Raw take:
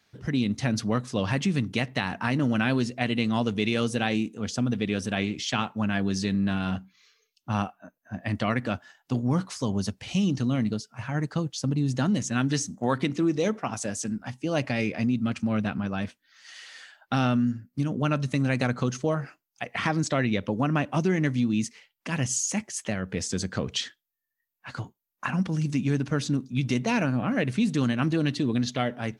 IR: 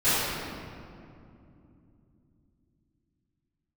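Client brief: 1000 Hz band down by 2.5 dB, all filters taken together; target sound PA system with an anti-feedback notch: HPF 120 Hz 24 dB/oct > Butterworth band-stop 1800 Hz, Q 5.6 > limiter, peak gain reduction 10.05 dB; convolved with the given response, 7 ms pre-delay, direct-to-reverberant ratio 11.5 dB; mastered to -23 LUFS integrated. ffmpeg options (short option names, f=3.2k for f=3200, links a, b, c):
-filter_complex "[0:a]equalizer=f=1k:t=o:g=-3.5,asplit=2[a][b];[1:a]atrim=start_sample=2205,adelay=7[c];[b][c]afir=irnorm=-1:irlink=0,volume=-28.5dB[d];[a][d]amix=inputs=2:normalize=0,highpass=f=120:w=0.5412,highpass=f=120:w=1.3066,asuperstop=centerf=1800:order=8:qfactor=5.6,volume=9dB,alimiter=limit=-14dB:level=0:latency=1"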